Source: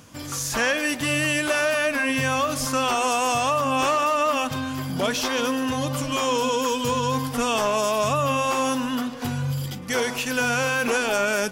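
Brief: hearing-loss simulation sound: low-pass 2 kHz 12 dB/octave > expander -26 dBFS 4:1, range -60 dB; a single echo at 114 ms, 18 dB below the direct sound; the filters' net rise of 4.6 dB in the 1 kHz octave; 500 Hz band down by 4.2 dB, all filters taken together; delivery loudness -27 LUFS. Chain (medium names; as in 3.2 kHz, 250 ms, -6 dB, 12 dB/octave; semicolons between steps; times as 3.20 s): low-pass 2 kHz 12 dB/octave; peaking EQ 500 Hz -7.5 dB; peaking EQ 1 kHz +7.5 dB; delay 114 ms -18 dB; expander -26 dBFS 4:1, range -60 dB; trim -4.5 dB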